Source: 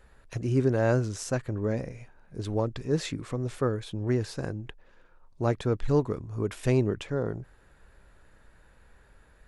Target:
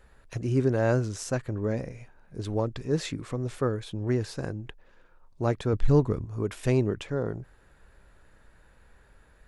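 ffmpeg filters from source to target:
-filter_complex "[0:a]asettb=1/sr,asplit=3[a][b][c];[a]atrim=end=5.734[d];[b]atrim=start=5.73:end=6.25,asetpts=PTS-STARTPTS,afade=t=in:d=0.004:c=qsin,afade=t=out:st=0.516:d=0.004:c=qsin,lowshelf=f=190:g=8.5[e];[c]atrim=start=6.246[f];[d][e]acrossfade=d=0.004:c1=hsin:c2=qsin[g];[g][f]acrossfade=d=0.004:c1=qsin:c2=hsin"

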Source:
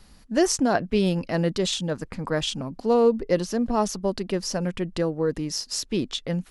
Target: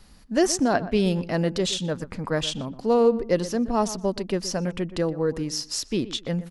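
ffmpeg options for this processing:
-filter_complex "[0:a]asplit=2[a][b];[b]adelay=122,lowpass=f=1.8k:p=1,volume=-14.5dB,asplit=2[c][d];[d]adelay=122,lowpass=f=1.8k:p=1,volume=0.24,asplit=2[e][f];[f]adelay=122,lowpass=f=1.8k:p=1,volume=0.24[g];[a][c][e][g]amix=inputs=4:normalize=0"

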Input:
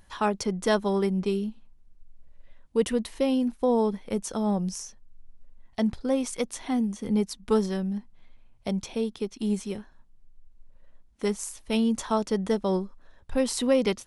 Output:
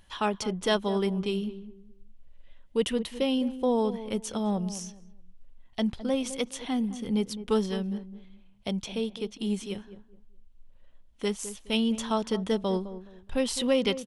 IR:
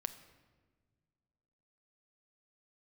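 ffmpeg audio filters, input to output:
-filter_complex "[0:a]equalizer=f=3.1k:w=2.3:g=9,asplit=2[a][b];[b]adelay=209,lowpass=f=830:p=1,volume=-12dB,asplit=2[c][d];[d]adelay=209,lowpass=f=830:p=1,volume=0.29,asplit=2[e][f];[f]adelay=209,lowpass=f=830:p=1,volume=0.29[g];[c][e][g]amix=inputs=3:normalize=0[h];[a][h]amix=inputs=2:normalize=0,volume=-2.5dB"

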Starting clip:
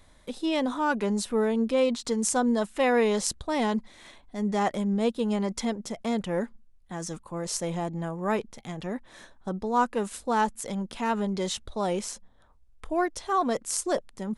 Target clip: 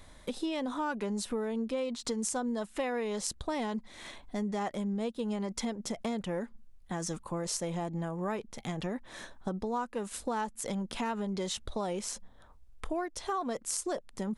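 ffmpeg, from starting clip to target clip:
-af "acompressor=threshold=-35dB:ratio=6,volume=3.5dB"

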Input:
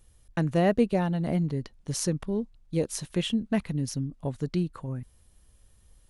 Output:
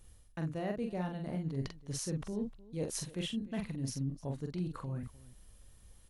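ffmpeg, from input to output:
-af "areverse,acompressor=threshold=-36dB:ratio=5,areverse,aecho=1:1:44|304:0.596|0.112"

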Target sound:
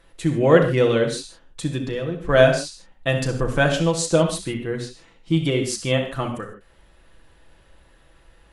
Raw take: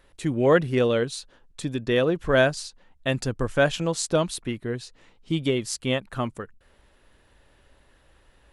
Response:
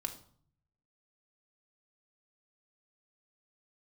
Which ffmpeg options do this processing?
-filter_complex "[0:a]asettb=1/sr,asplit=3[a][b][c];[a]atrim=end=1.884[d];[b]atrim=start=1.88:end=2.29,asetpts=PTS-STARTPTS,afade=t=in:d=0.004:c=qsin,afade=t=out:st=0.406:d=0.004:c=qsin,acrossover=split=130[e][f];[f]acompressor=threshold=-39dB:ratio=2[g];[e][g]amix=inputs=2:normalize=0[h];[c]atrim=start=2.286[i];[d][h]acrossfade=d=0.004:c1=hsin:c2=qsin[j];[j][i]acrossfade=d=0.004:c1=qsin:c2=hsin[k];[1:a]atrim=start_sample=2205,atrim=end_sample=3969,asetrate=23814,aresample=44100[l];[k][l]afir=irnorm=-1:irlink=0"

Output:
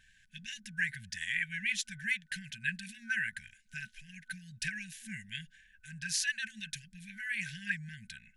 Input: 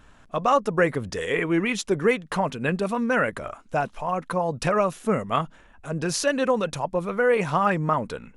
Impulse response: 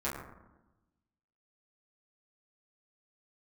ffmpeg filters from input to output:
-af "lowshelf=f=420:t=q:w=3:g=-11,afftfilt=real='re*(1-between(b*sr/4096,230,1500))':imag='im*(1-between(b*sr/4096,230,1500))':win_size=4096:overlap=0.75,volume=-4.5dB"

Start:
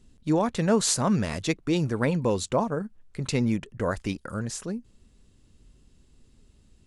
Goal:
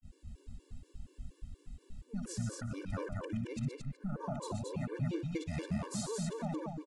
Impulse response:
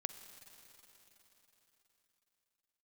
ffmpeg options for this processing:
-filter_complex "[0:a]areverse,agate=range=-33dB:threshold=-55dB:ratio=3:detection=peak,lowshelf=f=150:g=8.5,acompressor=threshold=-39dB:ratio=6,aecho=1:1:60|123|223|375:0.251|0.422|0.708|0.1,asplit=2[a][b];[1:a]atrim=start_sample=2205,asetrate=24255,aresample=44100,lowpass=3.2k[c];[b][c]afir=irnorm=-1:irlink=0,volume=-11dB[d];[a][d]amix=inputs=2:normalize=0,afftfilt=real='re*gt(sin(2*PI*4.2*pts/sr)*(1-2*mod(floor(b*sr/1024/300),2)),0)':imag='im*gt(sin(2*PI*4.2*pts/sr)*(1-2*mod(floor(b*sr/1024/300),2)),0)':win_size=1024:overlap=0.75,volume=1dB"

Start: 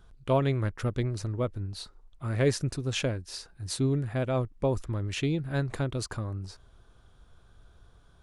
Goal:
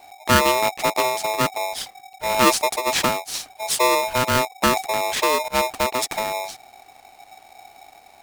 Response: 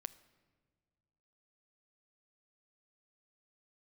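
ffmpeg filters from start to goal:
-filter_complex "[0:a]crystalizer=i=1:c=0,asettb=1/sr,asplit=3[a][b][c];[a]atrim=end=5.484[d];[b]atrim=start=5.48:end=5.94,asetpts=PTS-STARTPTS,afade=t=in:d=0.004:c=qsin,afade=t=out:st=0.456:d=0.004:c=qsin,agate=range=-33dB:threshold=-28dB:ratio=3:detection=peak[e];[c]atrim=start=5.936[f];[d][e]acrossfade=d=0.004:c1=hsin:c2=qsin[g];[g][f]acrossfade=d=0.004:c1=qsin:c2=hsin,aeval=exprs='val(0)*sgn(sin(2*PI*760*n/s))':c=same,volume=8dB"

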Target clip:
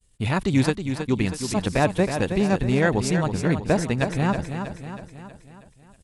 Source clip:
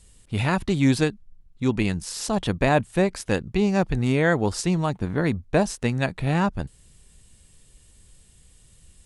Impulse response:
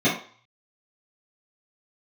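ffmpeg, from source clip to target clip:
-af "agate=range=-33dB:threshold=-44dB:ratio=3:detection=peak,atempo=1.5,aecho=1:1:320|640|960|1280|1600|1920:0.398|0.207|0.108|0.056|0.0291|0.0151"

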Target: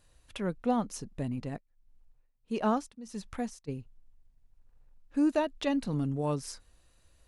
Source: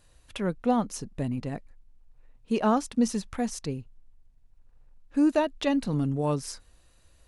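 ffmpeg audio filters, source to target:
-filter_complex "[0:a]asplit=3[a][b][c];[a]afade=t=out:st=1.56:d=0.02[d];[b]tremolo=f=1.5:d=0.89,afade=t=in:st=1.56:d=0.02,afade=t=out:st=3.67:d=0.02[e];[c]afade=t=in:st=3.67:d=0.02[f];[d][e][f]amix=inputs=3:normalize=0,volume=-4dB"

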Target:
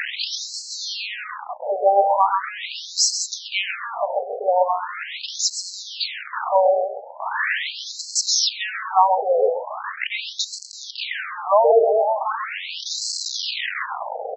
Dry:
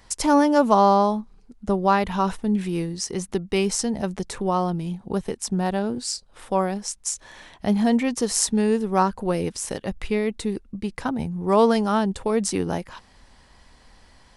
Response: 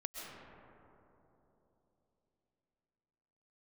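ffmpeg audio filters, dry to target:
-filter_complex "[0:a]aeval=exprs='val(0)+0.5*0.15*sgn(val(0))':c=same,asplit=2[a][b];[b]adelay=132,lowpass=f=3.2k:p=1,volume=-3.5dB,asplit=2[c][d];[d]adelay=132,lowpass=f=3.2k:p=1,volume=0.25,asplit=2[e][f];[f]adelay=132,lowpass=f=3.2k:p=1,volume=0.25,asplit=2[g][h];[h]adelay=132,lowpass=f=3.2k:p=1,volume=0.25[i];[a][c][e][g][i]amix=inputs=5:normalize=0,afftfilt=real='re*between(b*sr/1024,560*pow(5800/560,0.5+0.5*sin(2*PI*0.4*pts/sr))/1.41,560*pow(5800/560,0.5+0.5*sin(2*PI*0.4*pts/sr))*1.41)':imag='im*between(b*sr/1024,560*pow(5800/560,0.5+0.5*sin(2*PI*0.4*pts/sr))/1.41,560*pow(5800/560,0.5+0.5*sin(2*PI*0.4*pts/sr))*1.41)':win_size=1024:overlap=0.75,volume=4dB"

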